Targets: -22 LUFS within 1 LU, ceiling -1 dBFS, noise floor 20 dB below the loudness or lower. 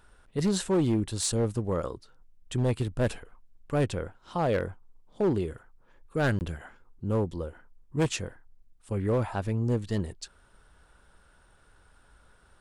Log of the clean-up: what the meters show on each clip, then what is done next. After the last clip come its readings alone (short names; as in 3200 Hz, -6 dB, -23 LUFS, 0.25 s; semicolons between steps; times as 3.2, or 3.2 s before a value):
clipped 1.4%; flat tops at -20.0 dBFS; dropouts 1; longest dropout 19 ms; loudness -30.0 LUFS; peak -20.0 dBFS; loudness target -22.0 LUFS
-> clip repair -20 dBFS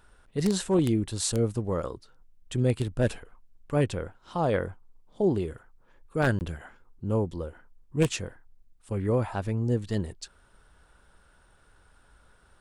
clipped 0.0%; dropouts 1; longest dropout 19 ms
-> interpolate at 6.39, 19 ms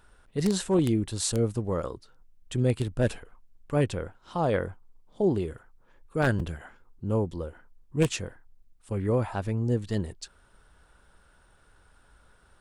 dropouts 0; loudness -29.0 LUFS; peak -11.0 dBFS; loudness target -22.0 LUFS
-> gain +7 dB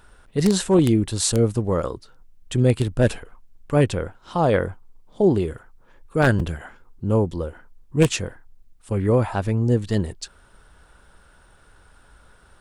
loudness -22.0 LUFS; peak -4.0 dBFS; noise floor -54 dBFS